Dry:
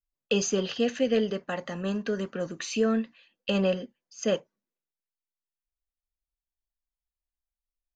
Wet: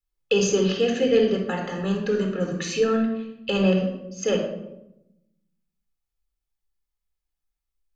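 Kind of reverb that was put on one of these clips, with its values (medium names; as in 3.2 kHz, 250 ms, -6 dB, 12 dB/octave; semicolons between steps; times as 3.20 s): simulated room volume 2700 m³, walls furnished, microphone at 4.1 m; trim +1 dB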